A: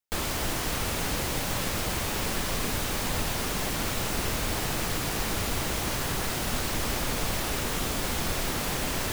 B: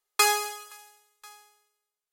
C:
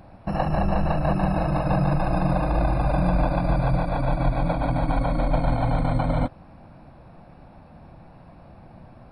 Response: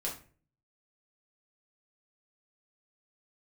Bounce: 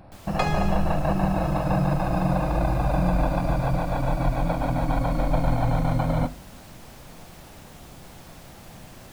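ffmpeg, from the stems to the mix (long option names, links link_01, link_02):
-filter_complex "[0:a]volume=-18.5dB[link_01];[1:a]lowpass=3400,acompressor=threshold=-26dB:ratio=6,adelay=200,volume=-0.5dB[link_02];[2:a]volume=-2dB,asplit=2[link_03][link_04];[link_04]volume=-15dB[link_05];[3:a]atrim=start_sample=2205[link_06];[link_05][link_06]afir=irnorm=-1:irlink=0[link_07];[link_01][link_02][link_03][link_07]amix=inputs=4:normalize=0"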